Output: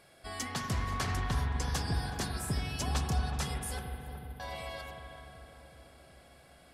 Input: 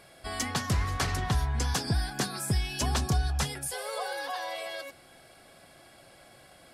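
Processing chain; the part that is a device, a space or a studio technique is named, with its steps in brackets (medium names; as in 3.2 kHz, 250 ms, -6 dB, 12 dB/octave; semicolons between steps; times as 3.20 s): 3.79–4.40 s: inverse Chebyshev band-stop 910–3800 Hz, stop band 70 dB; dub delay into a spring reverb (filtered feedback delay 374 ms, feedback 69%, low-pass 990 Hz, level -7.5 dB; spring tank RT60 2.8 s, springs 42 ms, chirp 70 ms, DRR 3.5 dB); trim -6 dB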